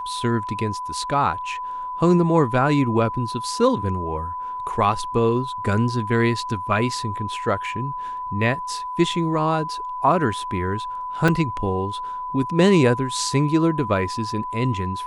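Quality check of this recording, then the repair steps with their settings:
whine 1 kHz -27 dBFS
11.28 s: dropout 3.7 ms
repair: band-stop 1 kHz, Q 30; interpolate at 11.28 s, 3.7 ms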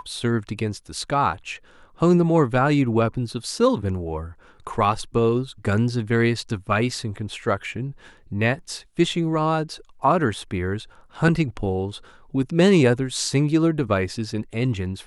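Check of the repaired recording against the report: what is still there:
nothing left

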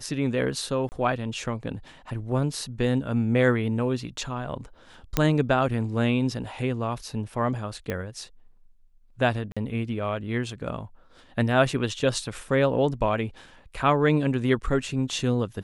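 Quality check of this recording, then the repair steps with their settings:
0.89–0.92 s: dropout 29 ms
5.17 s: pop -7 dBFS
7.90 s: pop -16 dBFS
9.52–9.57 s: dropout 46 ms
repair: de-click; interpolate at 0.89 s, 29 ms; interpolate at 9.52 s, 46 ms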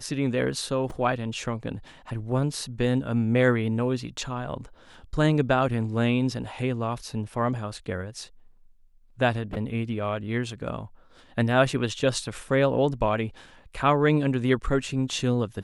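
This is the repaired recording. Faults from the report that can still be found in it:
nothing left

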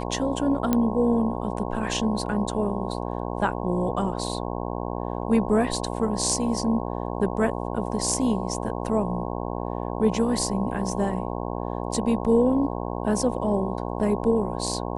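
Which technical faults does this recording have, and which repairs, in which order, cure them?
buzz 60 Hz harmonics 18 -30 dBFS
0.73 s: pop -9 dBFS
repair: de-click; de-hum 60 Hz, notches 18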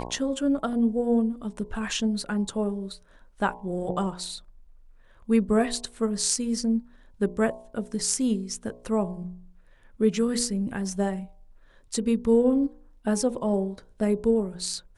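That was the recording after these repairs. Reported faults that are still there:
nothing left

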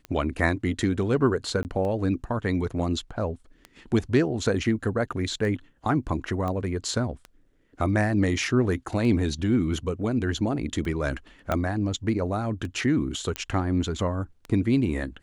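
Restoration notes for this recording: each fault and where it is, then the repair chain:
tick 33 1/3 rpm -23 dBFS
1.63–1.65 s: dropout 19 ms
6.48 s: pop -20 dBFS
11.52 s: pop -12 dBFS
13.36 s: pop -13 dBFS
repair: de-click; interpolate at 1.63 s, 19 ms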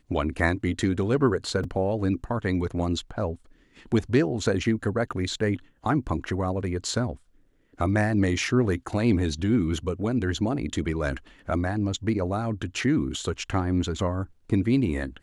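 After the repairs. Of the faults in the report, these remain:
6.48 s: pop
11.52 s: pop

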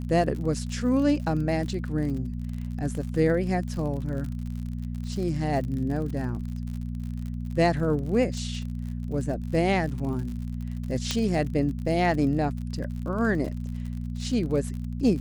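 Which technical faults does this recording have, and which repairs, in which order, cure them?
crackle 57 per s -34 dBFS
hum 60 Hz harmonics 4 -32 dBFS
11.11 s: pop -11 dBFS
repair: de-click; de-hum 60 Hz, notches 4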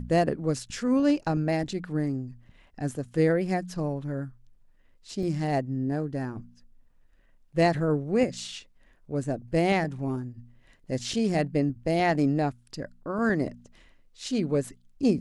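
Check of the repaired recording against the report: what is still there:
11.11 s: pop

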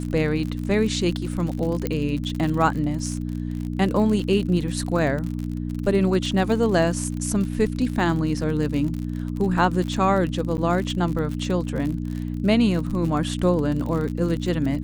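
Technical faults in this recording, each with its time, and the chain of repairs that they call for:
crackle 49 per s -28 dBFS
hum 60 Hz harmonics 5 -28 dBFS
1.87 s: pop -11 dBFS
10.57–10.58 s: dropout 9.6 ms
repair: de-click; de-hum 60 Hz, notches 5; interpolate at 10.57 s, 9.6 ms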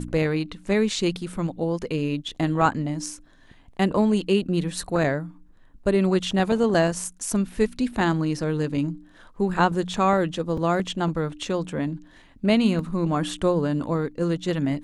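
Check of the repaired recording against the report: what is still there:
nothing left

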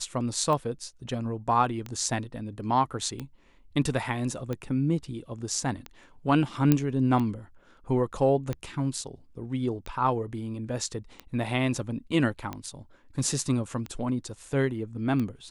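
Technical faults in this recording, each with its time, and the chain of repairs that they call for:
tick 45 rpm -20 dBFS
6.72 s: pop -8 dBFS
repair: de-click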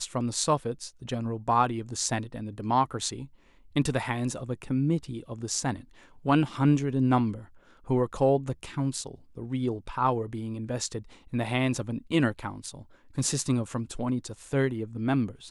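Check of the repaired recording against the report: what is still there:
nothing left

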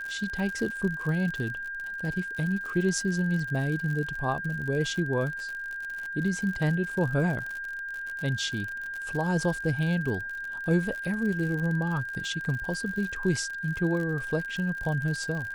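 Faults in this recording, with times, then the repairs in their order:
crackle 60 per s -33 dBFS
whine 1.6 kHz -33 dBFS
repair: de-click; band-stop 1.6 kHz, Q 30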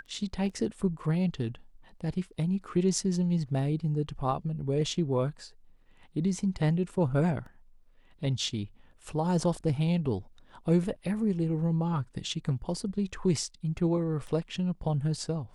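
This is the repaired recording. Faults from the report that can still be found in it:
nothing left

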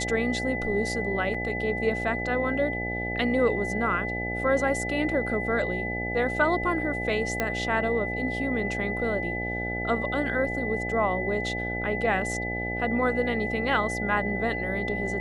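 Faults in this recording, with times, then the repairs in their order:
buzz 60 Hz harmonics 14 -33 dBFS
whine 2 kHz -31 dBFS
1.34 s: dropout 4.7 ms
7.40 s: pop -11 dBFS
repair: de-click; de-hum 60 Hz, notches 14; band-stop 2 kHz, Q 30; interpolate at 1.34 s, 4.7 ms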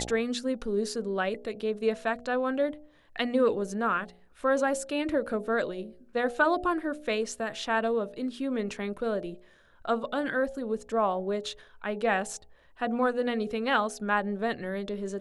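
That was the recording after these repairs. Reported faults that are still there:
nothing left

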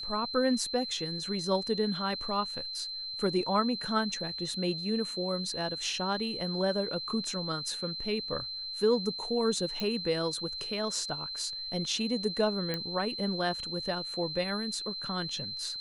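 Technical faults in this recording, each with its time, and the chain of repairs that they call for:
whine 4.1 kHz -36 dBFS
9.80 s: pop -19 dBFS
12.74 s: pop -18 dBFS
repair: de-click; band-stop 4.1 kHz, Q 30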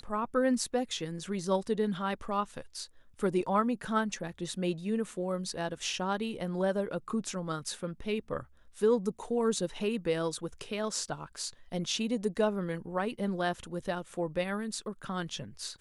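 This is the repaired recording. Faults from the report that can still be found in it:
nothing left

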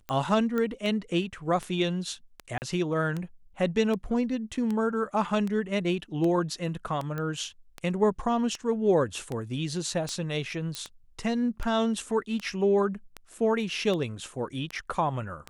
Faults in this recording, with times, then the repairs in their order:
tick 78 rpm -20 dBFS
0.58 s: pop -18 dBFS
2.58–2.62 s: dropout 39 ms
7.18 s: pop -21 dBFS
10.75 s: pop -18 dBFS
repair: de-click; interpolate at 2.58 s, 39 ms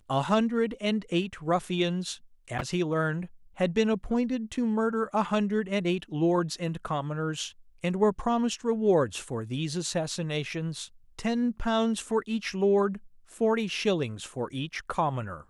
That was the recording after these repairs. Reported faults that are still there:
nothing left

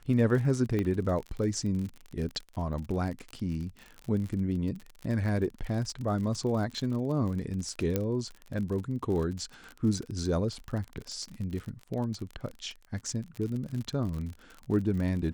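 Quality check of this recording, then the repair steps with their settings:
crackle 45 per s -35 dBFS
0.79 s: pop -19 dBFS
7.96 s: pop -14 dBFS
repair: de-click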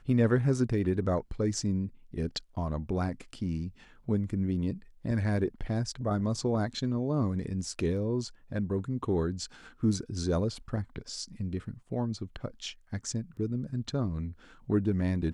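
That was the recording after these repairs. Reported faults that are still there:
0.79 s: pop
7.96 s: pop

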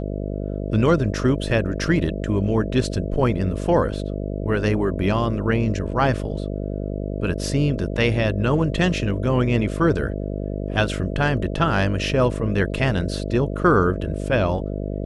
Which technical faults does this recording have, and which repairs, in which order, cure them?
buzz 50 Hz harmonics 13 -27 dBFS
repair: de-hum 50 Hz, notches 13

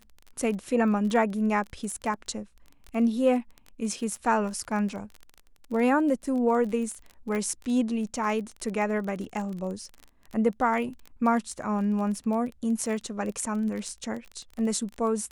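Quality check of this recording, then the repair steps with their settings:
crackle 24 per s -33 dBFS
7.35 s: pop -20 dBFS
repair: de-click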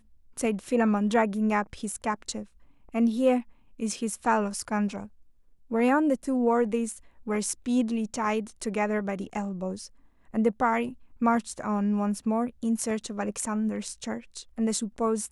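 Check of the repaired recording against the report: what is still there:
nothing left

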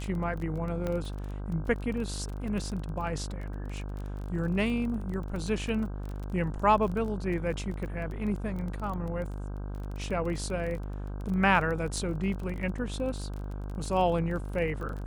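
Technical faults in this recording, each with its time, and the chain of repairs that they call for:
buzz 50 Hz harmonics 32 -36 dBFS
crackle 24 per s -35 dBFS
0.87 s: pop -20 dBFS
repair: de-click; de-hum 50 Hz, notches 32

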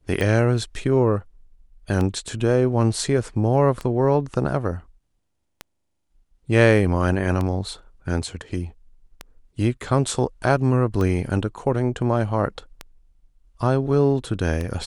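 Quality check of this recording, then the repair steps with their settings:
tick 33 1/3 rpm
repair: de-click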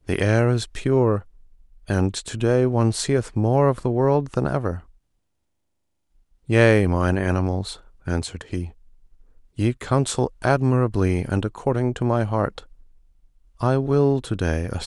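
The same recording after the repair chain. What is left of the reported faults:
nothing left

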